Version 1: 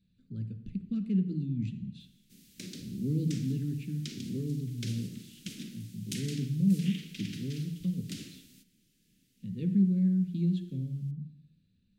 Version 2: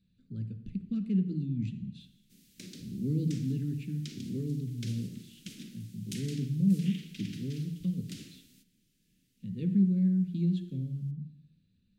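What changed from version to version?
background −3.5 dB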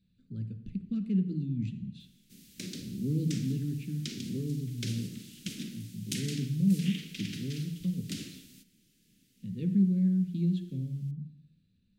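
background +6.5 dB

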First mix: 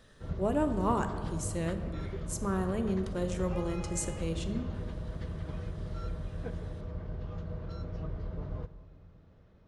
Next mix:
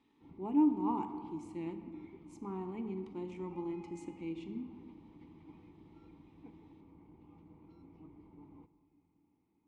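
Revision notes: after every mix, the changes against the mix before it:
speech +6.0 dB
master: add formant filter u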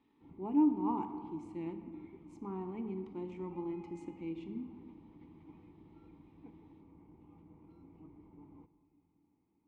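speech: add high-shelf EQ 4,300 Hz −11 dB
background: add high-frequency loss of the air 210 metres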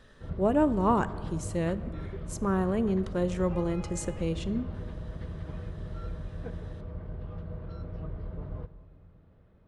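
speech: send −7.5 dB
master: remove formant filter u

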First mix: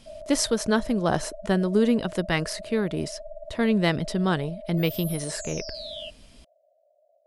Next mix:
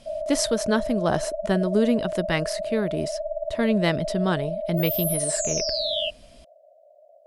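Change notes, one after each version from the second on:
background +11.0 dB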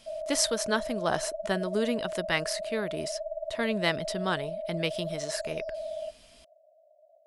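background: add resonant band-pass 640 Hz, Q 7.9
master: add low-shelf EQ 490 Hz −11.5 dB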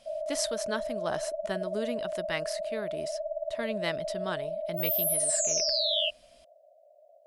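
speech −5.5 dB
background: remove resonant band-pass 640 Hz, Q 7.9

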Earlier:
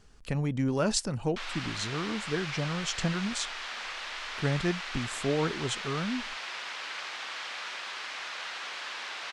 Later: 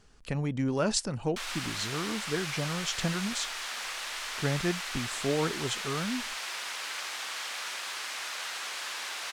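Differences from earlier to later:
background: remove low-pass filter 4,300 Hz 12 dB per octave
master: add low-shelf EQ 140 Hz −3.5 dB

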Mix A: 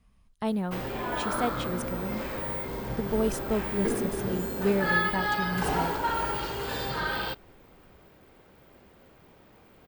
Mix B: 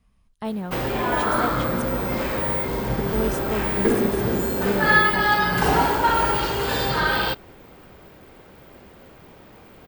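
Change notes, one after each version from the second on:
background +9.0 dB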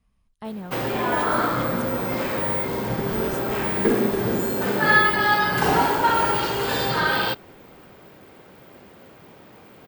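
speech −5.0 dB
background: add high-pass filter 100 Hz 12 dB per octave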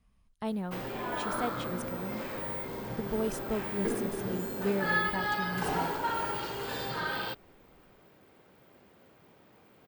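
background −11.0 dB
reverb: off

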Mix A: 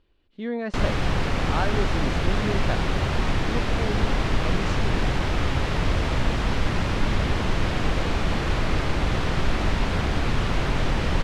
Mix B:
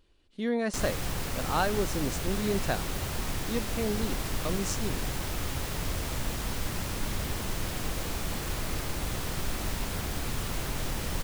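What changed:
background −10.0 dB
master: remove low-pass filter 3,300 Hz 12 dB per octave

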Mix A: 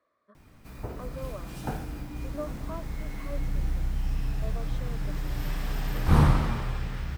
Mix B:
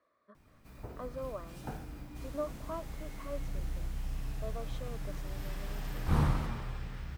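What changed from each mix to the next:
first sound −8.5 dB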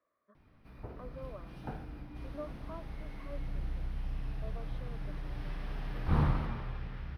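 speech −6.5 dB
master: add moving average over 6 samples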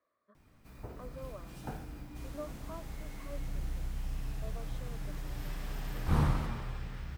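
master: remove moving average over 6 samples

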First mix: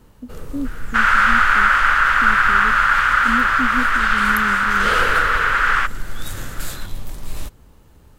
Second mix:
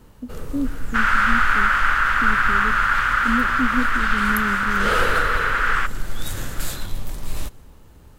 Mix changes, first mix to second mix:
second sound −5.0 dB
reverb: on, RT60 1.7 s

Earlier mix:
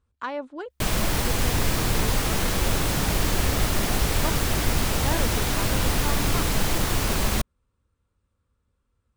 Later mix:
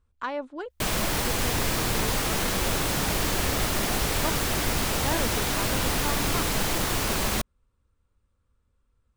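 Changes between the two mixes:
speech: remove high-pass filter 140 Hz 6 dB per octave
master: add low-shelf EQ 160 Hz −7 dB

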